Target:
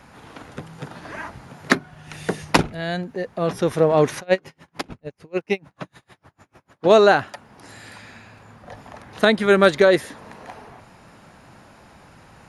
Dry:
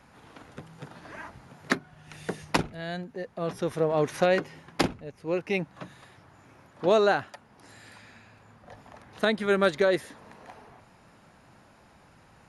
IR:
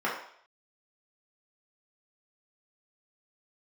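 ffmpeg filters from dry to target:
-filter_complex "[0:a]asplit=3[a][b][c];[a]afade=t=out:st=4.14:d=0.02[d];[b]aeval=exprs='val(0)*pow(10,-36*(0.5-0.5*cos(2*PI*6.7*n/s))/20)':c=same,afade=t=in:st=4.14:d=0.02,afade=t=out:st=6.88:d=0.02[e];[c]afade=t=in:st=6.88:d=0.02[f];[d][e][f]amix=inputs=3:normalize=0,volume=8.5dB"

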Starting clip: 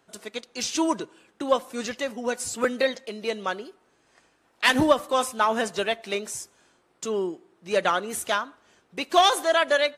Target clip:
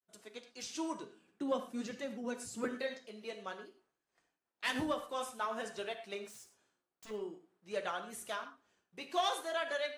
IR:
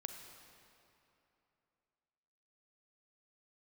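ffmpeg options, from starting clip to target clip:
-filter_complex "[0:a]asettb=1/sr,asplit=3[a][b][c];[a]atrim=end=1.034[d];[b]atrim=start=1.03:end=2.68,asetpts=PTS-STARTPTS,afade=t=in:d=0.004:c=qsin,afade=t=out:st=1.646:d=0.004:c=qsin,equalizer=f=210:t=o:w=1.6:g=10.5[e];[c]atrim=start=2.676[f];[d][e]acrossfade=d=0.004:c1=hsin:c2=qsin[g];[g][f]acrossfade=d=0.004:c1=qsin:c2=hsin,agate=range=-33dB:threshold=-56dB:ratio=3:detection=peak,asettb=1/sr,asplit=3[h][i][j];[h]atrim=end=6.264[k];[i]atrim=start=6.26:end=7.11,asetpts=PTS-STARTPTS,afade=t=in:d=0.004:c=qsin,afade=t=out:st=0.846:d=0.004:c=qsin,aeval=exprs='0.1*(cos(1*acos(clip(val(0)/0.1,-1,1)))-cos(1*PI/2))+0.0447*(cos(3*acos(clip(val(0)/0.1,-1,1)))-cos(3*PI/2))+0.0112*(cos(7*acos(clip(val(0)/0.1,-1,1)))-cos(7*PI/2))':c=same[l];[j]atrim=start=7.106[m];[k][l]acrossfade=d=0.004:c1=hsin:c2=qsin[n];[n][m]acrossfade=d=0.004:c1=qsin:c2=hsin,flanger=delay=4.9:depth=9.6:regen=-42:speed=0.49:shape=triangular[o];[1:a]atrim=start_sample=2205,atrim=end_sample=6174,asetrate=48510,aresample=44100[p];[o][p]afir=irnorm=-1:irlink=0,volume=-7dB"

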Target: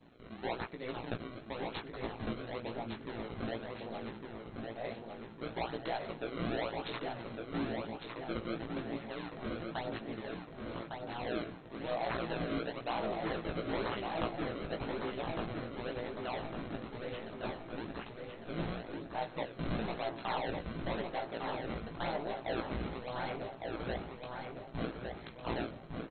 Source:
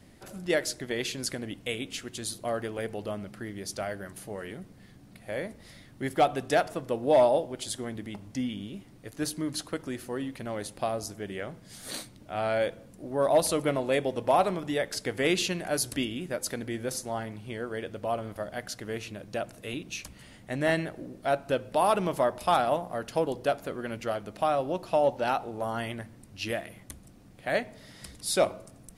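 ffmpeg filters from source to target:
-filter_complex "[0:a]highpass=110,bandreject=f=4.1k:w=6.8,acrossover=split=5700[a][b];[a]asoftclip=type=tanh:threshold=-28.5dB[c];[c][b]amix=inputs=2:normalize=0,asetrate=48951,aresample=44100,acrusher=samples=29:mix=1:aa=0.000001:lfo=1:lforange=46.4:lforate=0.98,tremolo=f=120:d=0.857,asplit=2[d][e];[e]adelay=18,volume=-4.5dB[f];[d][f]amix=inputs=2:normalize=0,asplit=2[g][h];[h]adelay=1156,lowpass=f=3.9k:p=1,volume=-4dB,asplit=2[i][j];[j]adelay=1156,lowpass=f=3.9k:p=1,volume=0.52,asplit=2[k][l];[l]adelay=1156,lowpass=f=3.9k:p=1,volume=0.52,asplit=2[m][n];[n]adelay=1156,lowpass=f=3.9k:p=1,volume=0.52,asplit=2[o][p];[p]adelay=1156,lowpass=f=3.9k:p=1,volume=0.52,asplit=2[q][r];[r]adelay=1156,lowpass=f=3.9k:p=1,volume=0.52,asplit=2[s][t];[t]adelay=1156,lowpass=f=3.9k:p=1,volume=0.52[u];[g][i][k][m][o][q][s][u]amix=inputs=8:normalize=0,volume=-2.5dB" -ar 16000 -c:a mp2 -b:a 32k

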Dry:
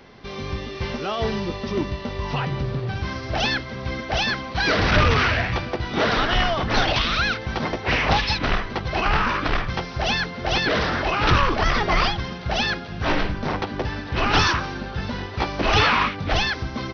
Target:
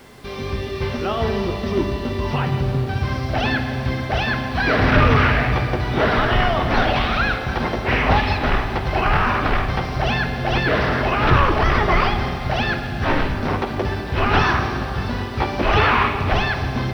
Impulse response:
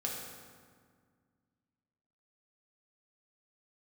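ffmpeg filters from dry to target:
-filter_complex "[0:a]acrossover=split=2800[a][b];[b]acompressor=threshold=-41dB:ratio=4:attack=1:release=60[c];[a][c]amix=inputs=2:normalize=0,acrusher=bits=8:mix=0:aa=0.000001,asplit=2[d][e];[1:a]atrim=start_sample=2205,asetrate=22491,aresample=44100[f];[e][f]afir=irnorm=-1:irlink=0,volume=-8dB[g];[d][g]amix=inputs=2:normalize=0,volume=-1dB"

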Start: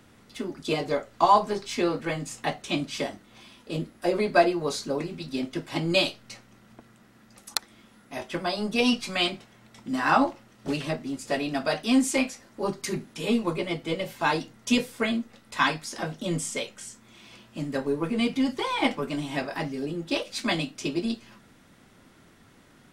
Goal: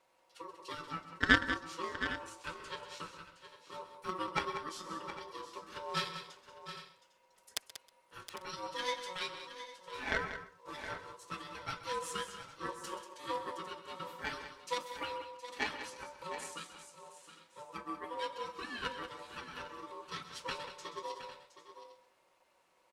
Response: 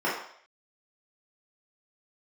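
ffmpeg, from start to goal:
-filter_complex "[0:a]aecho=1:1:5.1:0.93,aeval=exprs='val(0)*sin(2*PI*740*n/s)':c=same,asplit=2[a][b];[b]aecho=0:1:129:0.237[c];[a][c]amix=inputs=2:normalize=0,aeval=exprs='0.75*(cos(1*acos(clip(val(0)/0.75,-1,1)))-cos(1*PI/2))+0.188*(cos(3*acos(clip(val(0)/0.75,-1,1)))-cos(3*PI/2))':c=same,lowshelf=f=230:g=-9.5,asplit=2[d][e];[e]aecho=0:1:188|717|803:0.282|0.251|0.15[f];[d][f]amix=inputs=2:normalize=0,volume=-3dB"

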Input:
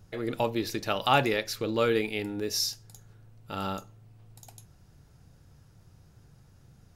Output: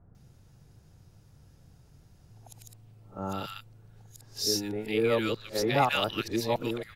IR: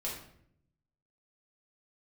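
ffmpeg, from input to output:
-filter_complex "[0:a]areverse,acrossover=split=1400[a][b];[b]adelay=150[c];[a][c]amix=inputs=2:normalize=0"

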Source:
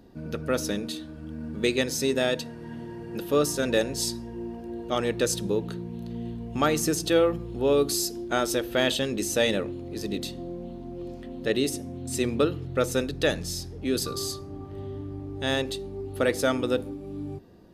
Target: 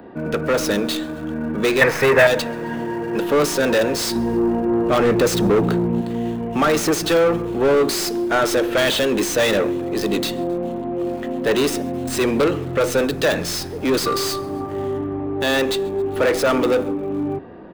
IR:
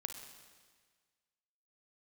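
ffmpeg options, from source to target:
-filter_complex "[0:a]asettb=1/sr,asplit=3[a][b][c];[a]atrim=end=4.154[d];[b]atrim=start=4.15:end=6.01,asetpts=PTS-STARTPTS,afade=t=in:d=0.004:c=qsin,afade=t=out:st=1.856:d=0.004:c=qsin,lowshelf=f=430:g=10[e];[c]atrim=start=6.006[f];[d][e]acrossfade=d=0.004:c1=hsin:c2=qsin[g];[g][f]acrossfade=d=0.004:c1=qsin:c2=hsin,asplit=2[h][i];[i]highpass=f=720:p=1,volume=29dB,asoftclip=type=tanh:threshold=-6.5dB[j];[h][j]amix=inputs=2:normalize=0,lowpass=f=2.1k:p=1,volume=-6dB,asettb=1/sr,asplit=3[k][l][m];[k]atrim=end=1.814[n];[l]atrim=start=1.81:end=2.27,asetpts=PTS-STARTPTS,afade=t=in:d=0.004:c=qsin,afade=t=out:st=0.456:d=0.004:c=qsin,equalizer=f=125:t=o:w=1:g=9,equalizer=f=250:t=o:w=1:g=-7,equalizer=f=500:t=o:w=1:g=4,equalizer=f=1k:t=o:w=1:g=6,equalizer=f=2k:t=o:w=1:g=12,equalizer=f=4k:t=o:w=1:g=-6,equalizer=f=8k:t=o:w=1:g=-6[o];[m]atrim=start=2.266[p];[n][o]acrossfade=d=0.004:c1=hsin:c2=qsin[q];[q][p]acrossfade=d=0.004:c1=qsin:c2=hsin,asplit=5[r][s][t][u][v];[s]adelay=133,afreqshift=-30,volume=-22dB[w];[t]adelay=266,afreqshift=-60,volume=-26.7dB[x];[u]adelay=399,afreqshift=-90,volume=-31.5dB[y];[v]adelay=532,afreqshift=-120,volume=-36.2dB[z];[r][w][x][y][z]amix=inputs=5:normalize=0,acrossover=split=260|540|2900[aa][ab][ac][ad];[ad]acrusher=bits=5:dc=4:mix=0:aa=0.000001[ae];[aa][ab][ac][ae]amix=inputs=4:normalize=0,volume=-1.5dB"

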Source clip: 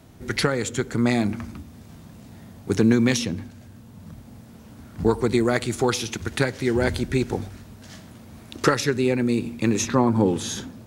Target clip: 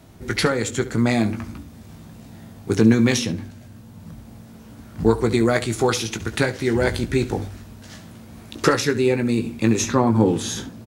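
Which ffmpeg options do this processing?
-af "aecho=1:1:18|70:0.398|0.158,volume=1.5dB"

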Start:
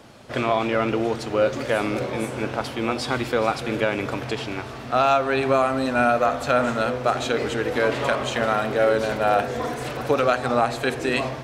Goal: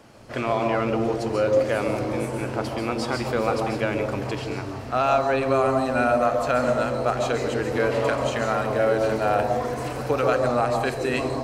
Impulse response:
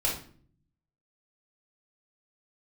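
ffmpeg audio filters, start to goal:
-filter_complex "[0:a]equalizer=f=3.6k:t=o:w=0.28:g=-6,asplit=2[a][b];[b]asuperstop=centerf=2200:order=20:qfactor=0.87[c];[1:a]atrim=start_sample=2205,adelay=131[d];[c][d]afir=irnorm=-1:irlink=0,volume=-10dB[e];[a][e]amix=inputs=2:normalize=0,volume=-3dB"

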